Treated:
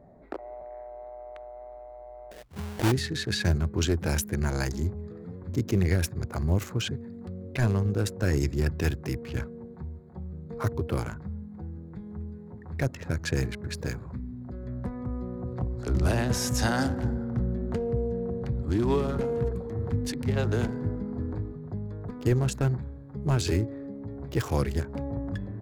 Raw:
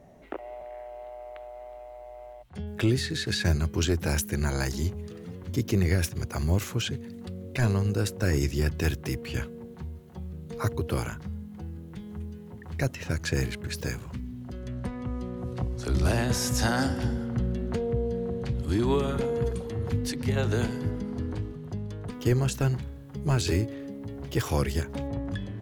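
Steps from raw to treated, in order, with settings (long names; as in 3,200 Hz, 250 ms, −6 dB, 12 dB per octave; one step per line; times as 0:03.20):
adaptive Wiener filter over 15 samples
0:02.31–0:02.92: sample-rate reduction 1,200 Hz, jitter 20%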